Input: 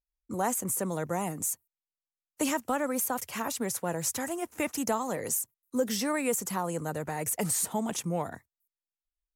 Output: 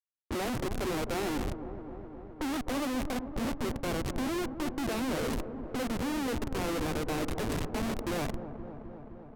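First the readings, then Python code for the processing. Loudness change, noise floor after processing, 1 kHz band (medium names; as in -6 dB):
-3.0 dB, -48 dBFS, -3.5 dB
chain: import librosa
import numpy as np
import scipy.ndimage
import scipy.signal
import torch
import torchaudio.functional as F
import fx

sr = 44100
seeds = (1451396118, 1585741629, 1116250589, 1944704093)

p1 = scipy.signal.medfilt(x, 41)
p2 = scipy.signal.sosfilt(scipy.signal.butter(16, 230.0, 'highpass', fs=sr, output='sos'), p1)
p3 = fx.high_shelf(p2, sr, hz=12000.0, db=12.0)
p4 = fx.leveller(p3, sr, passes=2)
p5 = fx.env_flanger(p4, sr, rest_ms=5.2, full_db=-28.0)
p6 = fx.schmitt(p5, sr, flips_db=-35.5)
p7 = fx.env_lowpass(p6, sr, base_hz=890.0, full_db=-36.0)
y = p7 + fx.echo_wet_lowpass(p7, sr, ms=259, feedback_pct=74, hz=910.0, wet_db=-9.5, dry=0)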